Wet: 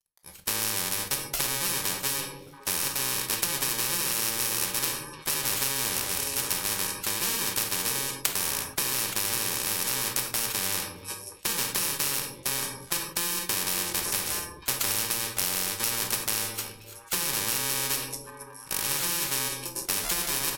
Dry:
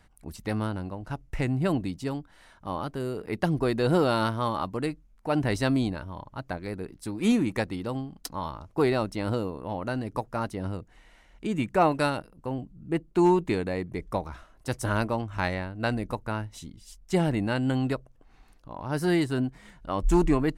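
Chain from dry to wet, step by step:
samples in bit-reversed order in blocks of 64 samples
dead-zone distortion −52.5 dBFS
automatic gain control gain up to 8 dB
spectral tilt +2 dB per octave
on a send: echo through a band-pass that steps 567 ms, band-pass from 430 Hz, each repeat 1.4 octaves, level −8 dB
on the sum: downward compressor 5 to 1, threshold −16 dBFS, peak gain reduction 12.5 dB
downsampling to 32,000 Hz
noise gate −31 dBFS, range −22 dB
parametric band 230 Hz −8.5 dB 0.77 octaves
rectangular room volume 410 cubic metres, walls furnished, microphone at 1.2 metres
every bin compressed towards the loudest bin 4 to 1

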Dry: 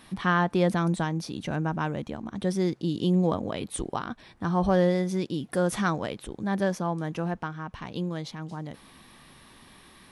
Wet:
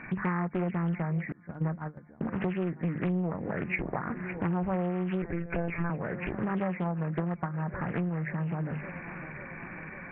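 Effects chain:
hearing-aid frequency compression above 1,400 Hz 4 to 1
feedback echo with a high-pass in the loop 551 ms, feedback 76%, high-pass 160 Hz, level −20 dB
0:05.22–0:05.90: one-pitch LPC vocoder at 8 kHz 170 Hz
0:06.84–0:07.54: transient designer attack +9 dB, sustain −6 dB
parametric band 160 Hz +8.5 dB 0.73 octaves
mains-hum notches 50/100/150/200/250 Hz
0:01.32–0:02.21: noise gate −22 dBFS, range −27 dB
downward compressor 5 to 1, threshold −35 dBFS, peak gain reduction 18.5 dB
highs frequency-modulated by the lows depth 0.6 ms
level +6 dB

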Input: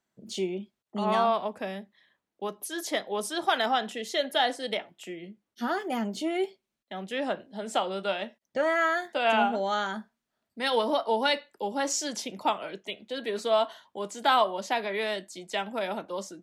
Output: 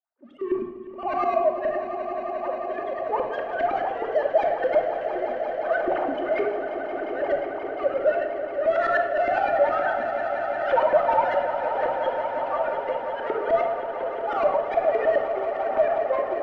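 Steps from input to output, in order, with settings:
three sine waves on the formant tracks
high-shelf EQ 2,500 Hz −11 dB
brickwall limiter −23.5 dBFS, peak gain reduction 13.5 dB
leveller curve on the samples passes 2
volume swells 114 ms
auto-filter band-pass saw up 9.7 Hz 370–1,900 Hz
echo that builds up and dies away 177 ms, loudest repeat 5, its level −12.5 dB
rectangular room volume 2,900 cubic metres, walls furnished, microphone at 2.6 metres
level +8.5 dB

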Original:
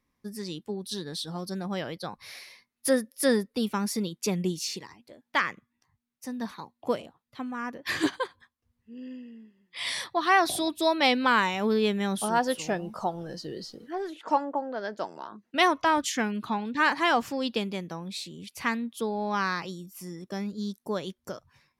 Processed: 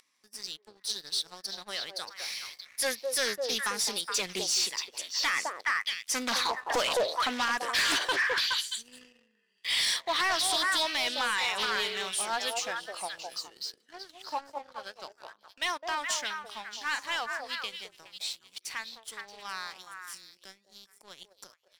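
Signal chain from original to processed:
source passing by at 0:06.78, 7 m/s, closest 3.4 metres
upward compression, threshold −56 dBFS
meter weighting curve ITU-R 468
leveller curve on the samples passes 1
low-shelf EQ 170 Hz −6 dB
echo through a band-pass that steps 209 ms, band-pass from 550 Hz, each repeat 1.4 octaves, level −2 dB
brickwall limiter −28 dBFS, peak gain reduction 11.5 dB
notch filter 6,600 Hz, Q 18
leveller curve on the samples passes 2
highs frequency-modulated by the lows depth 0.35 ms
level +6 dB

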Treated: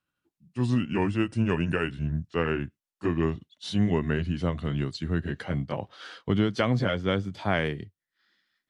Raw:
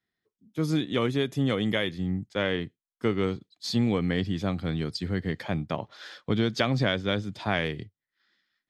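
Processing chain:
pitch glide at a constant tempo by −4.5 semitones ending unshifted
dynamic equaliser 4,100 Hz, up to −6 dB, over −47 dBFS, Q 0.93
level +2 dB

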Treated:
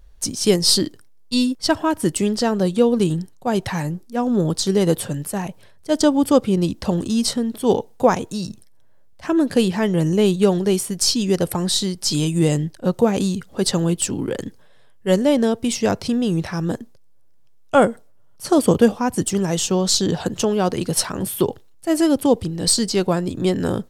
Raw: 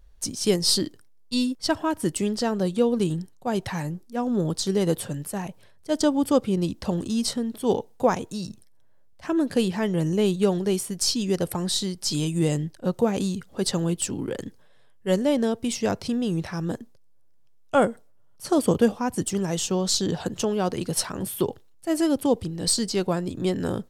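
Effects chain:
level +5.5 dB

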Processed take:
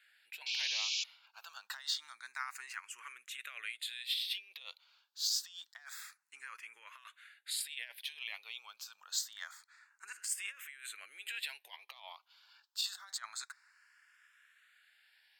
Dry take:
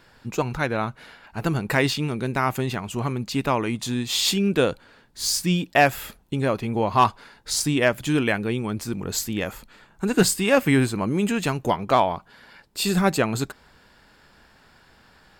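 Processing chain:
dynamic equaliser 3,800 Hz, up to +6 dB, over −47 dBFS, Q 4.5
compressor whose output falls as the input rises −23 dBFS, ratio −0.5
four-pole ladder high-pass 1,300 Hz, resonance 25%
sound drawn into the spectrogram noise, 0:00.46–0:01.04, 2,200–7,400 Hz −29 dBFS
frequency shifter mixed with the dry sound +0.27 Hz
level −4.5 dB

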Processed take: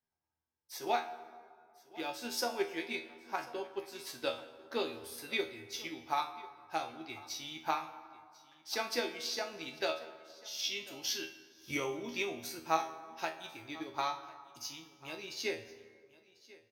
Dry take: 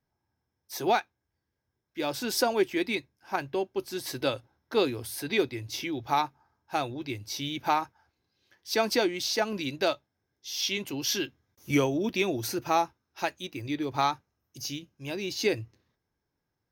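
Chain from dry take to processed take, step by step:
low-shelf EQ 390 Hz −9.5 dB
tuned comb filter 80 Hz, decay 0.33 s, harmonics all, mix 90%
transient designer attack +5 dB, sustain −1 dB
high-shelf EQ 9,400 Hz −4 dB
single-tap delay 1,044 ms −21 dB
dense smooth reverb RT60 2.1 s, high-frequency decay 0.55×, DRR 11 dB

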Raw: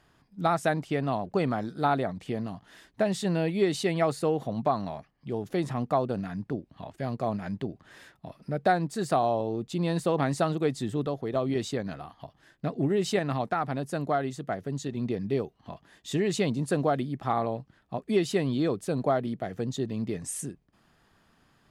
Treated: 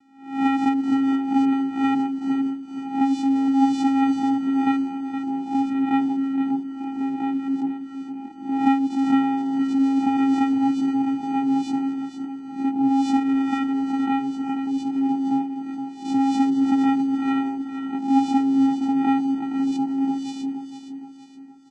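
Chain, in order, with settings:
peak hold with a rise ahead of every peak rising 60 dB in 0.53 s
channel vocoder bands 4, square 271 Hz
repeating echo 468 ms, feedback 45%, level −9 dB
level +6 dB

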